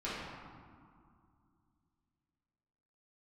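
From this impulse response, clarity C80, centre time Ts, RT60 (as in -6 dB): 0.5 dB, 122 ms, 2.3 s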